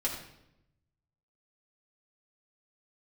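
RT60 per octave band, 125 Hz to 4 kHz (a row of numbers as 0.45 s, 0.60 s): 1.5 s, 1.1 s, 0.90 s, 0.75 s, 0.70 s, 0.65 s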